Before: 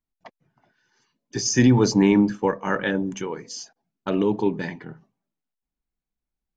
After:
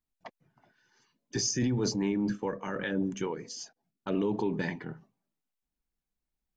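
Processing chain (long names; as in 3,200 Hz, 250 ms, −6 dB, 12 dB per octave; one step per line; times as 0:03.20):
brickwall limiter −18.5 dBFS, peak gain reduction 11.5 dB
0:01.51–0:04.15: rotating-speaker cabinet horn 5 Hz
level −1.5 dB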